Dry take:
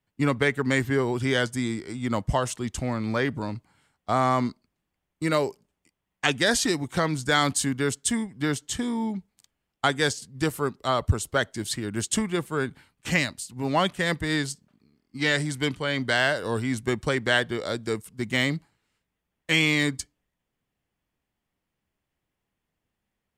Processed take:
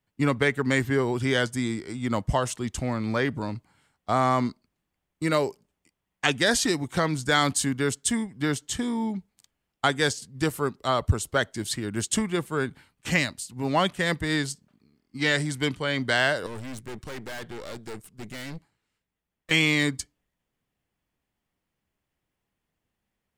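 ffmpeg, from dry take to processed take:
ffmpeg -i in.wav -filter_complex "[0:a]asettb=1/sr,asplit=3[link_01][link_02][link_03];[link_01]atrim=end=16.464[link_04];[link_02]atrim=start=16.46:end=19.51,asetpts=PTS-STARTPTS,afade=type=in:duration=0.004:curve=qsin,afade=type=out:start_time=3.046:duration=0.004:curve=qsin,aeval=exprs='(tanh(56.2*val(0)+0.75)-tanh(0.75))/56.2':channel_layout=same[link_05];[link_03]atrim=start=19.506[link_06];[link_04][link_05]acrossfade=duration=0.004:curve1=hsin:curve2=qsin[link_07];[link_07][link_06]acrossfade=duration=0.004:curve1=qsin:curve2=hsin" out.wav

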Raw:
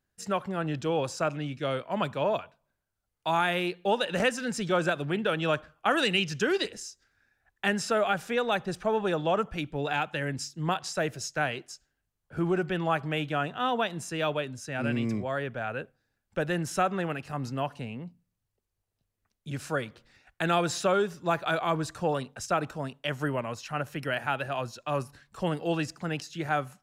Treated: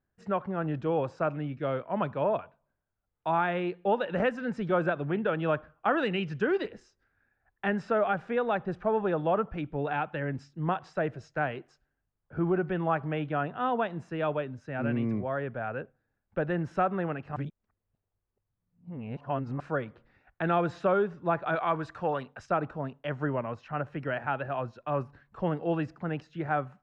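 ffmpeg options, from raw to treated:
ffmpeg -i in.wav -filter_complex "[0:a]asettb=1/sr,asplit=3[link_01][link_02][link_03];[link_01]atrim=end=21.554[link_04];[link_02]atrim=start=21.55:end=22.49,asetpts=PTS-STARTPTS,afade=type=in:duration=0.004:curve=qsin,afade=type=out:start_time=0.936:duration=0.004:curve=qsin,tiltshelf=frequency=740:gain=-5.5[link_05];[link_03]atrim=start=22.486[link_06];[link_04][link_05]acrossfade=duration=0.004:curve1=hsin:curve2=qsin[link_07];[link_07][link_06]acrossfade=duration=0.004:curve1=qsin:curve2=hsin,asplit=3[link_08][link_09][link_10];[link_08]atrim=end=17.362[link_11];[link_09]atrim=start=17.358:end=19.602,asetpts=PTS-STARTPTS,areverse[link_12];[link_10]atrim=start=19.598[link_13];[link_11][link_12]acrossfade=duration=0.004:curve1=hsin:curve2=hsin[link_14];[link_14][link_13]acrossfade=duration=0.004:curve1=hsin:curve2=hsin,lowpass=1600" out.wav

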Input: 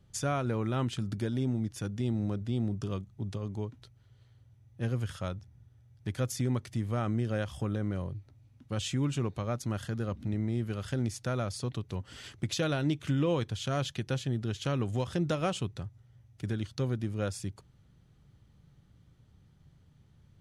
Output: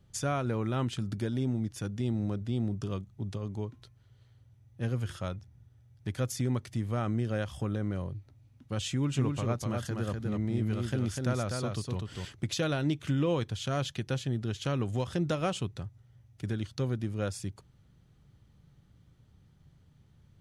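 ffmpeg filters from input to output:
ffmpeg -i in.wav -filter_complex "[0:a]asettb=1/sr,asplit=3[link_01][link_02][link_03];[link_01]atrim=end=3.564[link_04];[link_02]atrim=start=3.56:end=5.36,asetpts=PTS-STARTPTS,afade=type=in:duration=0.004:curve=qsin,afade=type=out:start_time=1.796:duration=0.004:curve=qsin,bandreject=frequency=351.2:width_type=h:width=4,bandreject=frequency=702.4:width_type=h:width=4,bandreject=frequency=1053.6:width_type=h:width=4,bandreject=frequency=1404.8:width_type=h:width=4,bandreject=frequency=1756:width_type=h:width=4,bandreject=frequency=2107.2:width_type=h:width=4,bandreject=frequency=2458.4:width_type=h:width=4[link_05];[link_03]atrim=start=5.356[link_06];[link_04][link_05]acrossfade=duration=0.004:curve1=hsin:curve2=qsin[link_07];[link_07][link_06]acrossfade=duration=0.004:curve1=qsin:curve2=hsin,asettb=1/sr,asplit=3[link_08][link_09][link_10];[link_08]atrim=end=8.894[link_11];[link_09]atrim=start=8.89:end=12.25,asetpts=PTS-STARTPTS,afade=type=in:duration=0.004:curve=qsin,afade=type=out:start_time=3.356:duration=0.004:curve=qsin,aecho=1:1:248:0.668,atrim=end_sample=148176[link_12];[link_10]atrim=start=12.246[link_13];[link_11][link_12]acrossfade=duration=0.004:curve1=hsin:curve2=qsin[link_14];[link_14][link_13]acrossfade=duration=0.004:curve1=qsin:curve2=hsin" out.wav

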